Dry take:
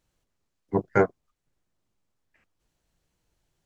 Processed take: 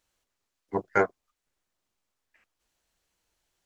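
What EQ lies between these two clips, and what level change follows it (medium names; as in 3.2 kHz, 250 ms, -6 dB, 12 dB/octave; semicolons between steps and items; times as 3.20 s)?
peaking EQ 140 Hz -14 dB 0.24 oct; bass shelf 500 Hz -11 dB; +2.5 dB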